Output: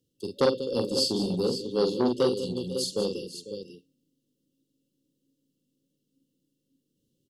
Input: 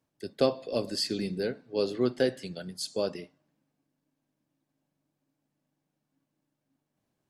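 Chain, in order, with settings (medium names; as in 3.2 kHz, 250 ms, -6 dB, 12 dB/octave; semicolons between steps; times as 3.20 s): multi-tap echo 44/192/497/546 ms -4.5/-12/-15.5/-10.5 dB; FFT band-reject 560–2700 Hz; transformer saturation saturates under 780 Hz; trim +3.5 dB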